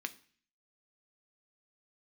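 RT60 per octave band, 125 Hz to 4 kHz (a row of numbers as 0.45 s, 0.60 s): 0.65 s, 0.60 s, 0.45 s, 0.45 s, 0.55 s, 0.55 s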